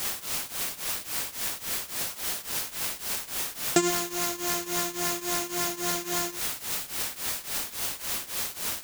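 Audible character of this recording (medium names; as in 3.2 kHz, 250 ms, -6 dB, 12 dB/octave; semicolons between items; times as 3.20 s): a quantiser's noise floor 6-bit, dither triangular; tremolo triangle 3.6 Hz, depth 90%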